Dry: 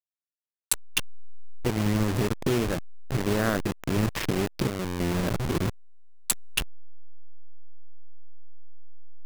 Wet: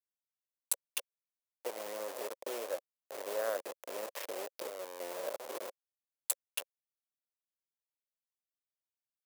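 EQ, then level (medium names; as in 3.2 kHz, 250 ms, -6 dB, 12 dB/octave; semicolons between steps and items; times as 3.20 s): ladder high-pass 500 Hz, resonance 70%; peaking EQ 1 kHz +2.5 dB 0.34 oct; treble shelf 7 kHz +11.5 dB; -3.5 dB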